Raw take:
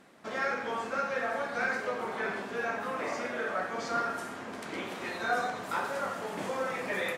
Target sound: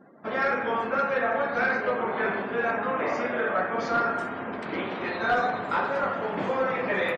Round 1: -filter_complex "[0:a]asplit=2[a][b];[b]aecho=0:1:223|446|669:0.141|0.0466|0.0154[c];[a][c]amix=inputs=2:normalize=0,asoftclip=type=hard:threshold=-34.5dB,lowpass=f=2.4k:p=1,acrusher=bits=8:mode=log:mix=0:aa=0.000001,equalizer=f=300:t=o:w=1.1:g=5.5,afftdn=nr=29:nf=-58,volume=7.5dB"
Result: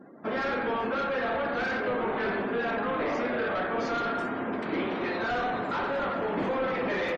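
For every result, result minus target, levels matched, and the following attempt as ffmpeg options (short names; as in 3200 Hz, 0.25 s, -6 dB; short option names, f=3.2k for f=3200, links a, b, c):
hard clip: distortion +15 dB; 250 Hz band +4.0 dB
-filter_complex "[0:a]asplit=2[a][b];[b]aecho=0:1:223|446|669:0.141|0.0466|0.0154[c];[a][c]amix=inputs=2:normalize=0,asoftclip=type=hard:threshold=-24.5dB,lowpass=f=2.4k:p=1,acrusher=bits=8:mode=log:mix=0:aa=0.000001,equalizer=f=300:t=o:w=1.1:g=5.5,afftdn=nr=29:nf=-58,volume=7.5dB"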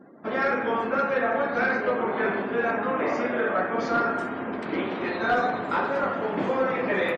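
250 Hz band +3.0 dB
-filter_complex "[0:a]asplit=2[a][b];[b]aecho=0:1:223|446|669:0.141|0.0466|0.0154[c];[a][c]amix=inputs=2:normalize=0,asoftclip=type=hard:threshold=-24.5dB,lowpass=f=2.4k:p=1,acrusher=bits=8:mode=log:mix=0:aa=0.000001,afftdn=nr=29:nf=-58,volume=7.5dB"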